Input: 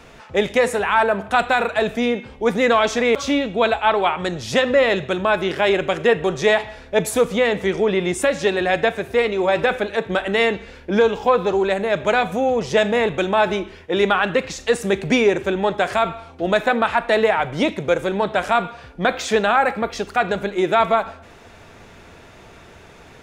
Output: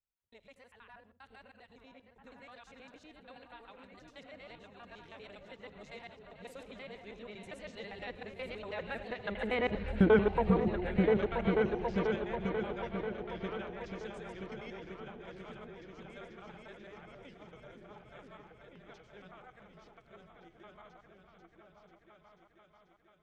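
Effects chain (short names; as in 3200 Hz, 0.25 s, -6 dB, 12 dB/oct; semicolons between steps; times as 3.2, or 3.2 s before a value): local time reversal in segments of 87 ms; Doppler pass-by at 9.94, 28 m/s, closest 3.8 m; RIAA curve playback; gate with hold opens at -47 dBFS; tilt shelf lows -9 dB, about 1400 Hz; treble ducked by the level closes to 1700 Hz, closed at -33 dBFS; repeats that get brighter 0.489 s, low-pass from 200 Hz, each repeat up 2 oct, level 0 dB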